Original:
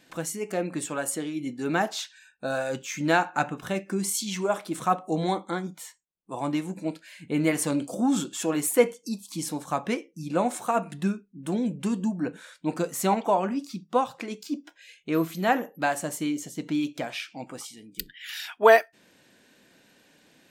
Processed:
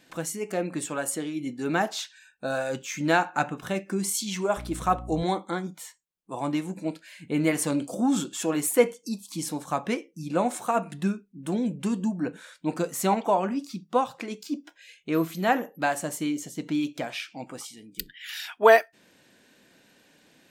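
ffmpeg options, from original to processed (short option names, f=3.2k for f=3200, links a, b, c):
-filter_complex "[0:a]asettb=1/sr,asplit=3[a][b][c];[a]atrim=end=4.574[d];[b]atrim=start=4.57:end=5.23,asetpts=PTS-STARTPTS,afade=t=in:d=0.004:c=qsin,afade=t=out:st=0.656:d=0.004:c=qsin,aeval=exprs='val(0)+0.0141*(sin(2*PI*60*n/s)+sin(2*PI*2*60*n/s)/2+sin(2*PI*3*60*n/s)/3+sin(2*PI*4*60*n/s)/4+sin(2*PI*5*60*n/s)/5)':c=same[e];[c]atrim=start=5.226[f];[d][e]acrossfade=d=0.004:c1=hsin:c2=qsin[g];[g][f]acrossfade=d=0.004:c1=qsin:c2=hsin"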